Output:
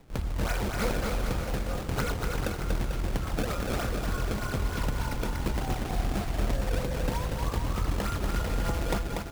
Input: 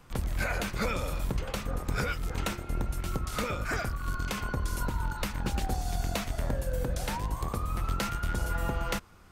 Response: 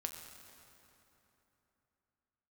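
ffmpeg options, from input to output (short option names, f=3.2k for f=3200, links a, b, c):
-filter_complex "[0:a]acrusher=samples=26:mix=1:aa=0.000001:lfo=1:lforange=41.6:lforate=3.3,asplit=2[a][b];[b]aecho=0:1:240|444|617.4|764.8|890.1:0.631|0.398|0.251|0.158|0.1[c];[a][c]amix=inputs=2:normalize=0"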